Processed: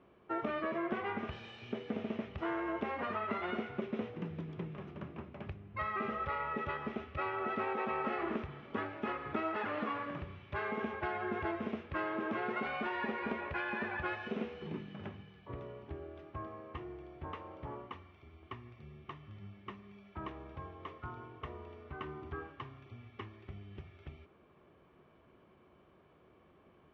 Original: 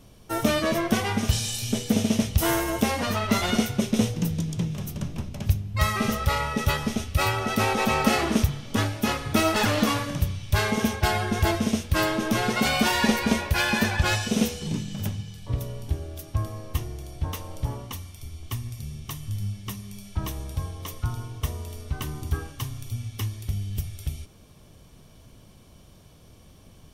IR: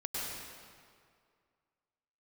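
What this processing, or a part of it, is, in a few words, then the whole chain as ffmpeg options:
bass amplifier: -af "lowshelf=frequency=310:gain=-10.5,acompressor=threshold=-29dB:ratio=4,highpass=72,equalizer=frequency=110:width_type=q:width=4:gain=-7,equalizer=frequency=370:width_type=q:width=4:gain=9,equalizer=frequency=1200:width_type=q:width=4:gain=4,lowpass=frequency=2300:width=0.5412,lowpass=frequency=2300:width=1.3066,volume=-5.5dB"

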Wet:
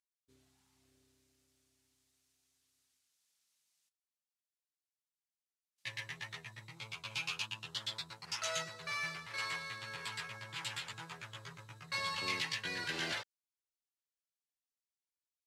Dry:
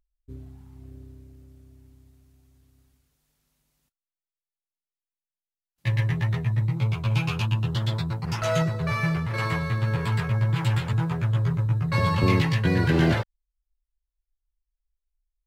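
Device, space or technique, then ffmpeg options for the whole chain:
piezo pickup straight into a mixer: -af "lowpass=6600,aderivative,volume=3dB"

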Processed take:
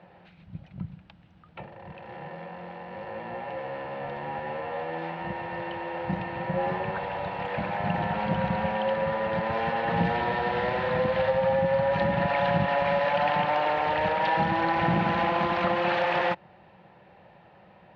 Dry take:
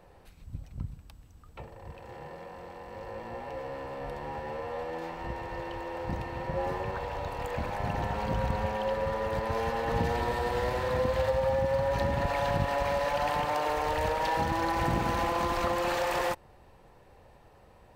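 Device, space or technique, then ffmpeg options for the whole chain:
kitchen radio: -af "highpass=170,equalizer=frequency=180:width_type=q:width=4:gain=9,equalizer=frequency=260:width_type=q:width=4:gain=-9,equalizer=frequency=440:width_type=q:width=4:gain=-9,equalizer=frequency=1100:width_type=q:width=4:gain=-6,lowpass=frequency=3400:width=0.5412,lowpass=frequency=3400:width=1.3066,volume=6.5dB"

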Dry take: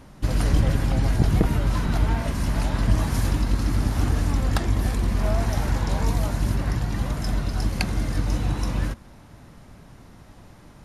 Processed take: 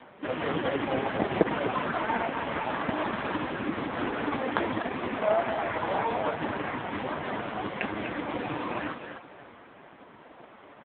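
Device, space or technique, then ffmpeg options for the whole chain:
satellite phone: -filter_complex "[0:a]asplit=3[link_01][link_02][link_03];[link_01]afade=type=out:start_time=3.51:duration=0.02[link_04];[link_02]bandreject=frequency=50:width_type=h:width=6,bandreject=frequency=100:width_type=h:width=6,afade=type=in:start_time=3.51:duration=0.02,afade=type=out:start_time=4.19:duration=0.02[link_05];[link_03]afade=type=in:start_time=4.19:duration=0.02[link_06];[link_04][link_05][link_06]amix=inputs=3:normalize=0,highpass=380,lowpass=3400,aecho=1:1:248:0.473,aecho=1:1:573:0.0944,volume=7.5dB" -ar 8000 -c:a libopencore_amrnb -b:a 4750

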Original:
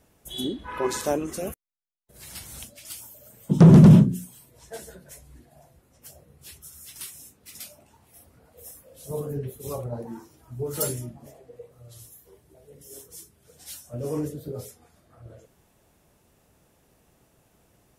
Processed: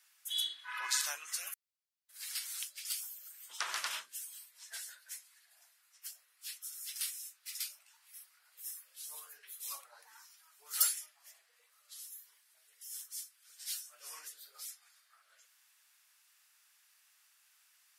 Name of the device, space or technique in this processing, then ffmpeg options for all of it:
headphones lying on a table: -af "highpass=frequency=1400:width=0.5412,highpass=frequency=1400:width=1.3066,equalizer=frequency=4700:width_type=o:width=0.4:gain=4.5"

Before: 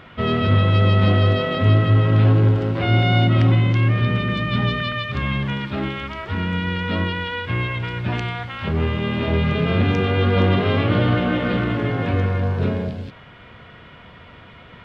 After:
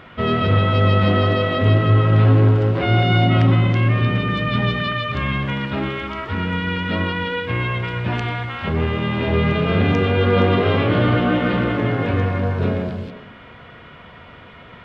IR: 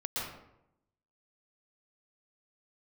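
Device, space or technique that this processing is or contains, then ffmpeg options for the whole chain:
filtered reverb send: -filter_complex "[0:a]asplit=2[link_01][link_02];[link_02]highpass=180,lowpass=3100[link_03];[1:a]atrim=start_sample=2205[link_04];[link_03][link_04]afir=irnorm=-1:irlink=0,volume=-9dB[link_05];[link_01][link_05]amix=inputs=2:normalize=0"

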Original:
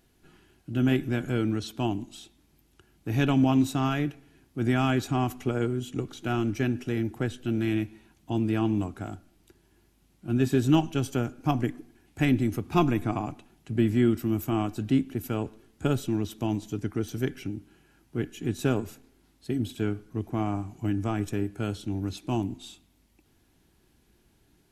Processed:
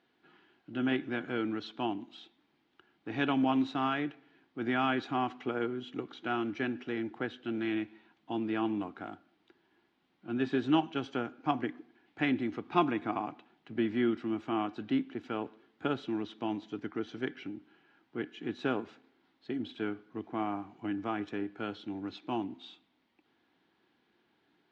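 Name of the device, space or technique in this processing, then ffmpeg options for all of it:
phone earpiece: -af "highpass=340,equalizer=frequency=400:width_type=q:width=4:gain=-4,equalizer=frequency=600:width_type=q:width=4:gain=-5,equalizer=frequency=2600:width_type=q:width=4:gain=-4,lowpass=frequency=3600:width=0.5412,lowpass=frequency=3600:width=1.3066"

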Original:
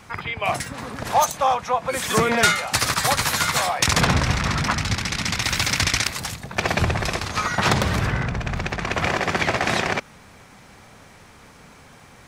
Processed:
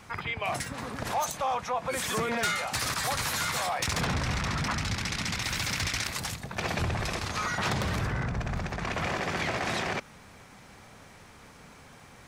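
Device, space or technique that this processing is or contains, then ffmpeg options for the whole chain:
soft clipper into limiter: -filter_complex "[0:a]asoftclip=type=tanh:threshold=-11.5dB,alimiter=limit=-18.5dB:level=0:latency=1:release=21,asettb=1/sr,asplit=3[link_01][link_02][link_03];[link_01]atrim=end=8.014[link_04];[link_02]atrim=start=8.01:end=8.83,asetpts=PTS-STARTPTS,afade=type=in:duration=0.004:curve=qsin,afade=type=out:start_time=0.816:duration=0.004:curve=qsin,equalizer=frequency=2900:width=1.2:gain=-4[link_05];[link_03]atrim=start=8.826[link_06];[link_04][link_05]acrossfade=duration=0.004:curve1=hsin:curve2=qsin[link_07];[link_07][link_06]acrossfade=duration=0.004:curve1=qsin:curve2=hsin,volume=-4dB"

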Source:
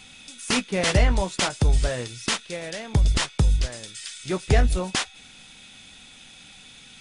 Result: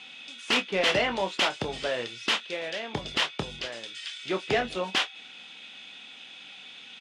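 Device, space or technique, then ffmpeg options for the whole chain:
intercom: -filter_complex "[0:a]highpass=310,lowpass=3800,equalizer=frequency=3000:width_type=o:width=0.56:gain=6.5,asoftclip=type=tanh:threshold=-14.5dB,asplit=2[link_01][link_02];[link_02]adelay=26,volume=-10dB[link_03];[link_01][link_03]amix=inputs=2:normalize=0"

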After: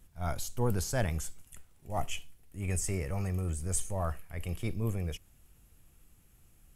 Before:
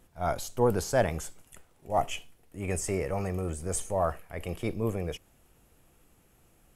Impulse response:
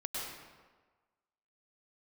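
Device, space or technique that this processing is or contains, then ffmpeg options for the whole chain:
smiley-face EQ: -af "lowshelf=frequency=130:gain=8,equalizer=frequency=560:width_type=o:width=2.2:gain=-7.5,highshelf=frequency=7100:gain=4.5,volume=-2.5dB"

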